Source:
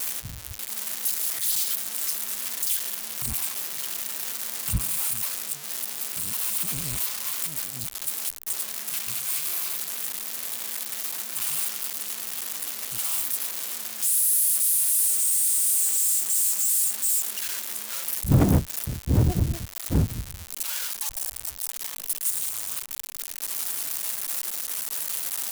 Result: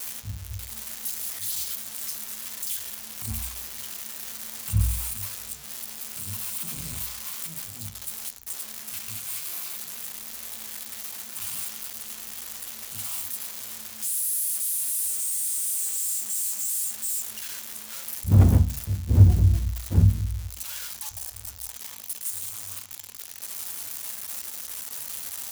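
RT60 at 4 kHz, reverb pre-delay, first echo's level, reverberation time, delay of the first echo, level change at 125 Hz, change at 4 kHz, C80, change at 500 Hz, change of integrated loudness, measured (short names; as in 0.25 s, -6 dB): 0.40 s, 3 ms, none, 0.40 s, none, +5.0 dB, -4.5 dB, 22.0 dB, -5.5 dB, -3.0 dB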